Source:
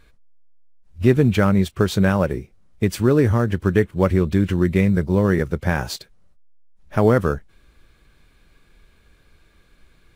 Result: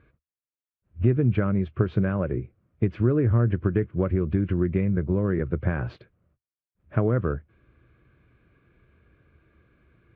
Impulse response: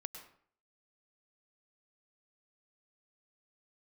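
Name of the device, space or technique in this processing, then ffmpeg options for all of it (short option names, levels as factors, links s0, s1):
bass amplifier: -af "acompressor=threshold=0.126:ratio=5,highpass=69,equalizer=f=76:t=q:w=4:g=6,equalizer=f=120:t=q:w=4:g=8,equalizer=f=330:t=q:w=4:g=4,equalizer=f=850:t=q:w=4:g=-9,equalizer=f=1900:t=q:w=4:g=-5,lowpass=f=2300:w=0.5412,lowpass=f=2300:w=1.3066,volume=0.75"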